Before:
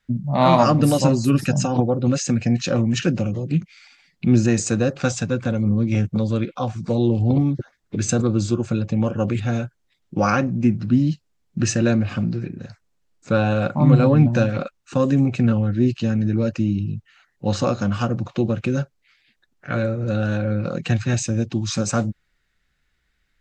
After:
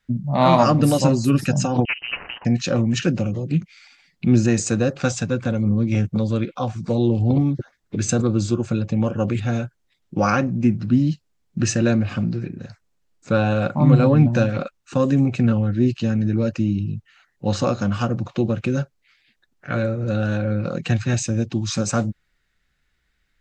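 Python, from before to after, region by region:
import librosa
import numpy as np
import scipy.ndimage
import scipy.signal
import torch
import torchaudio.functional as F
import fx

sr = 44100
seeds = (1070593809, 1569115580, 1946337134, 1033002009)

y = fx.chain(x, sr, fx.self_delay(depth_ms=0.82),
    fx.highpass(hz=580.0, slope=24),
    fx.freq_invert(carrier_hz=3400), at=(1.85, 2.45))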